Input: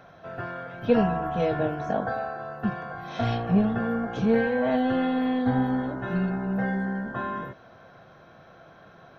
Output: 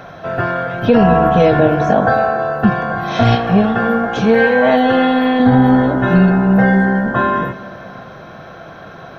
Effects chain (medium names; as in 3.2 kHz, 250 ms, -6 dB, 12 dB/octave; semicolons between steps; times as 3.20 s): 3.35–5.40 s: bass shelf 380 Hz -9.5 dB; reverberation RT60 3.3 s, pre-delay 13 ms, DRR 14.5 dB; loudness maximiser +17 dB; trim -1 dB